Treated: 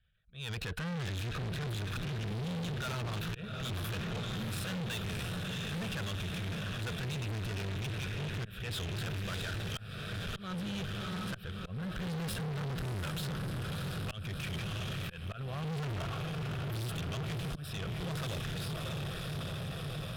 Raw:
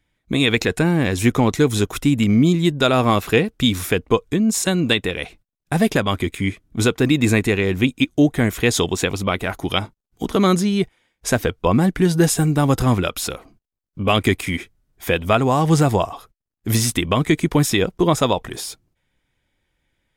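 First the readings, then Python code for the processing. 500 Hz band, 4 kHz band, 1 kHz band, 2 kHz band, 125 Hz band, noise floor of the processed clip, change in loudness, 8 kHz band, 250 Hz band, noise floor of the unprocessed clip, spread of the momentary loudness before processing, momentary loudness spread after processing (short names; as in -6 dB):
-23.0 dB, -15.0 dB, -20.5 dB, -16.5 dB, -13.5 dB, -45 dBFS, -18.5 dB, -21.0 dB, -21.5 dB, -81 dBFS, 9 LU, 3 LU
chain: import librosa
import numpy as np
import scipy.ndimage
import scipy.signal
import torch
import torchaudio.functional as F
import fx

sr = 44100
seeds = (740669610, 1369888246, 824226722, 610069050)

p1 = fx.bass_treble(x, sr, bass_db=0, treble_db=-14)
p2 = fx.fixed_phaser(p1, sr, hz=1400.0, stages=8)
p3 = fx.transient(p2, sr, attack_db=-6, sustain_db=6)
p4 = p3 + fx.echo_diffused(p3, sr, ms=675, feedback_pct=75, wet_db=-6.5, dry=0)
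p5 = fx.auto_swell(p4, sr, attack_ms=437.0)
p6 = fx.band_shelf(p5, sr, hz=530.0, db=-11.5, octaves=2.5)
y = fx.tube_stage(p6, sr, drive_db=35.0, bias=0.35)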